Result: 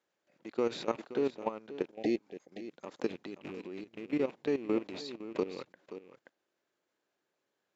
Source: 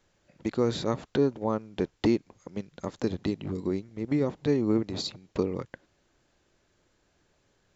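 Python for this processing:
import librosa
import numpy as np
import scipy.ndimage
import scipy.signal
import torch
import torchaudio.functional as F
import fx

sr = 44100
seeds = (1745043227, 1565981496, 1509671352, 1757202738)

y = fx.rattle_buzz(x, sr, strikes_db=-38.0, level_db=-34.0)
y = scipy.signal.sosfilt(scipy.signal.butter(2, 310.0, 'highpass', fs=sr, output='sos'), y)
y = fx.high_shelf(y, sr, hz=5700.0, db=-8.5)
y = y + 10.0 ** (-11.0 / 20.0) * np.pad(y, (int(528 * sr / 1000.0), 0))[:len(y)]
y = fx.spec_repair(y, sr, seeds[0], start_s=1.96, length_s=0.71, low_hz=800.0, high_hz=1600.0, source='both')
y = fx.level_steps(y, sr, step_db=14)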